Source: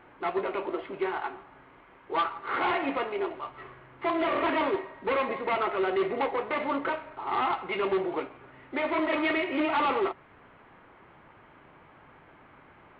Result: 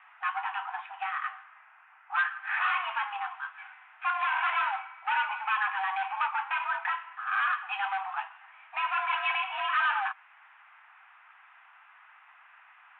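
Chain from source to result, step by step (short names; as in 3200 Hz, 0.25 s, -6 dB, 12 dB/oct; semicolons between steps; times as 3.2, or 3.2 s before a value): mistuned SSB +390 Hz 450–2700 Hz; 0.66–2.34 low-pass opened by the level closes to 1800 Hz, open at -29.5 dBFS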